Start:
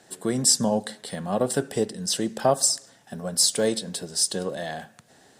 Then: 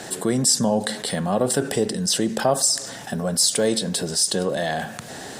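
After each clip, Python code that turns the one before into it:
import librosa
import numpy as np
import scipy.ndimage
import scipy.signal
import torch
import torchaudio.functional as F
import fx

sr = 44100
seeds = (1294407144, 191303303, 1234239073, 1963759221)

y = fx.env_flatten(x, sr, amount_pct=50)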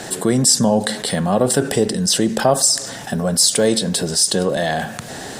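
y = fx.low_shelf(x, sr, hz=86.0, db=5.5)
y = y * 10.0 ** (4.5 / 20.0)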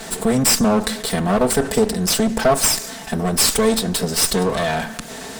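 y = fx.lower_of_two(x, sr, delay_ms=4.5)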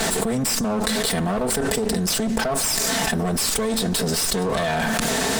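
y = fx.env_flatten(x, sr, amount_pct=100)
y = y * 10.0 ** (-10.5 / 20.0)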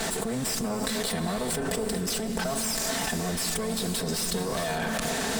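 y = fx.rev_gated(x, sr, seeds[0], gate_ms=470, shape='rising', drr_db=6.5)
y = y * 10.0 ** (-7.5 / 20.0)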